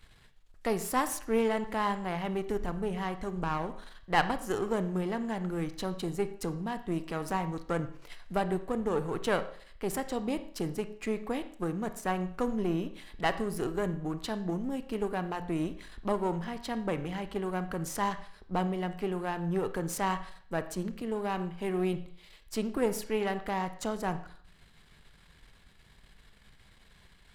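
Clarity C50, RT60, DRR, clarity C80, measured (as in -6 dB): 12.5 dB, 0.55 s, 10.5 dB, 15.5 dB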